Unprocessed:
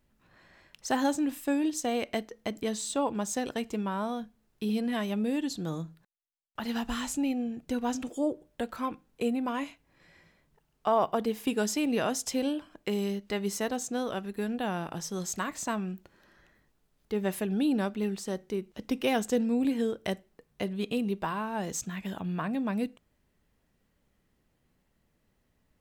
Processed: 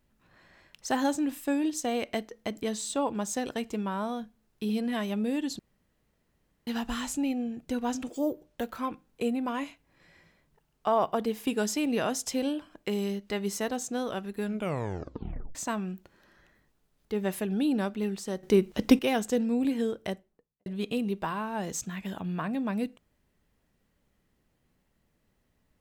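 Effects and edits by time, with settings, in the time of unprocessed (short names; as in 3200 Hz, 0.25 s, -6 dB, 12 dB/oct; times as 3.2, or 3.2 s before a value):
5.59–6.67 room tone
8.13–8.78 careless resampling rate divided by 3×, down none, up hold
14.43 tape stop 1.12 s
18.43–18.99 gain +11 dB
19.9–20.66 studio fade out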